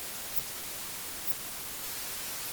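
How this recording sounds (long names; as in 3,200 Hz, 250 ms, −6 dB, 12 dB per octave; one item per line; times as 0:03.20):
a quantiser's noise floor 6 bits, dither triangular
Opus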